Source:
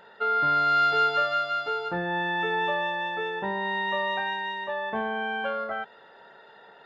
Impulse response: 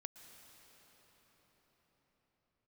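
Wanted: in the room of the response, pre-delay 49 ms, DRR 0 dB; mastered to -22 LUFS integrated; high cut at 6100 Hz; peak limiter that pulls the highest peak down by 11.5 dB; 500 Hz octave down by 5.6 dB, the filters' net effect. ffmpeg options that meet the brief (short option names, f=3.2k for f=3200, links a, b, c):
-filter_complex "[0:a]lowpass=6.1k,equalizer=f=500:t=o:g=-7,alimiter=level_in=3dB:limit=-24dB:level=0:latency=1,volume=-3dB,asplit=2[a][b];[1:a]atrim=start_sample=2205,adelay=49[c];[b][c]afir=irnorm=-1:irlink=0,volume=5dB[d];[a][d]amix=inputs=2:normalize=0,volume=8.5dB"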